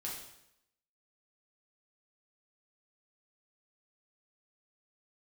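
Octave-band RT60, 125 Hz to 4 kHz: 0.80, 0.80, 0.80, 0.80, 0.75, 0.75 seconds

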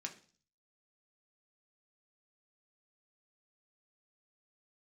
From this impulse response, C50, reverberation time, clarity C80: 13.5 dB, 0.40 s, 18.0 dB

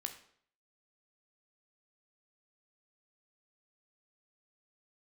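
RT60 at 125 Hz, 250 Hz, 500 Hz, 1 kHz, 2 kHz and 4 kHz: 0.65, 0.60, 0.60, 0.60, 0.55, 0.50 seconds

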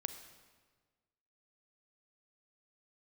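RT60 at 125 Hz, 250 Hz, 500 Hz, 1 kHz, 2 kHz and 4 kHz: 1.6, 1.6, 1.5, 1.4, 1.3, 1.2 seconds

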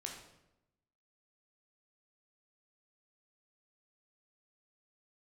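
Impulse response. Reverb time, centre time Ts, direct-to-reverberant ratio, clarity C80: 0.90 s, 35 ms, 0.0 dB, 7.5 dB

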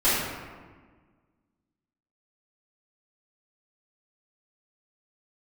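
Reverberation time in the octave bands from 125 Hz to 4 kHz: 1.9, 2.0, 1.5, 1.4, 1.3, 0.85 seconds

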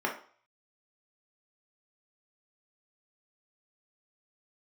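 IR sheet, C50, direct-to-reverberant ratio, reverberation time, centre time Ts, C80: 8.0 dB, −1.5 dB, 0.45 s, 21 ms, 13.5 dB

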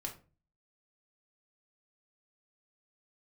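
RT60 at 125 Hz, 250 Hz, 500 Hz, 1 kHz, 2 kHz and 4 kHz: 0.60, 0.50, 0.40, 0.30, 0.30, 0.25 seconds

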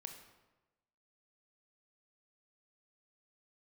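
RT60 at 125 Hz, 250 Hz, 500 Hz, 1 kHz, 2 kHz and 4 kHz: 1.2, 1.1, 1.2, 1.1, 0.90, 0.75 seconds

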